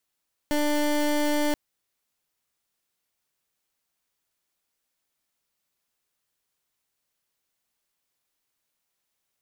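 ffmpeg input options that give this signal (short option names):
-f lavfi -i "aevalsrc='0.0668*(2*lt(mod(296*t,1),0.23)-1)':d=1.03:s=44100"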